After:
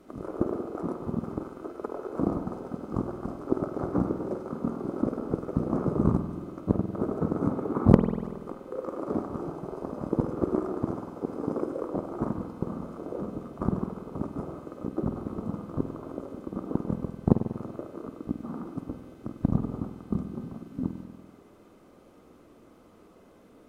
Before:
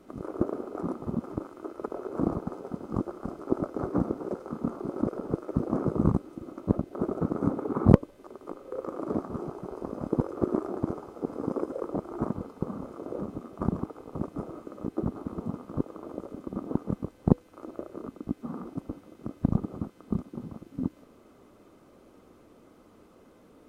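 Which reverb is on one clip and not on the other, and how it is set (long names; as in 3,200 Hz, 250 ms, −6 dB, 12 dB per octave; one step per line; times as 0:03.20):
spring reverb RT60 1.4 s, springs 48 ms, chirp 55 ms, DRR 6.5 dB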